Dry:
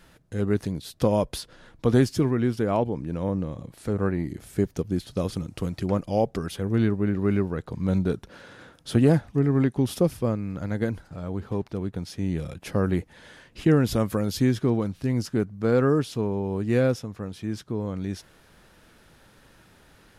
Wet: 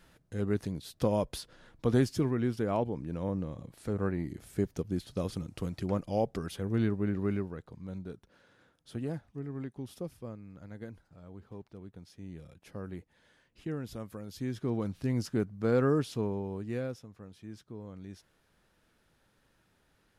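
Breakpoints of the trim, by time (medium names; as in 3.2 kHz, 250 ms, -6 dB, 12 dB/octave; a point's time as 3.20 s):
7.20 s -6.5 dB
7.89 s -17.5 dB
14.28 s -17.5 dB
14.89 s -5.5 dB
16.25 s -5.5 dB
16.89 s -15 dB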